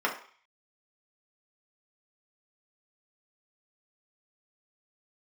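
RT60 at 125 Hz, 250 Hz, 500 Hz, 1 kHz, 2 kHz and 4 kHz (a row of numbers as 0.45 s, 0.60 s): 0.25 s, 0.35 s, 0.40 s, 0.50 s, 0.55 s, 0.60 s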